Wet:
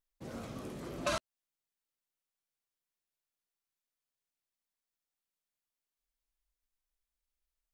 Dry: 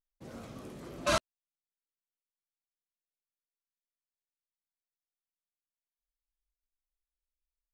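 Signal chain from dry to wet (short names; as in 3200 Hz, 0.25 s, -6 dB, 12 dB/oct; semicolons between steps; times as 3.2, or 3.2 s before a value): compressor 6:1, threshold -33 dBFS, peak gain reduction 10 dB; gain +2.5 dB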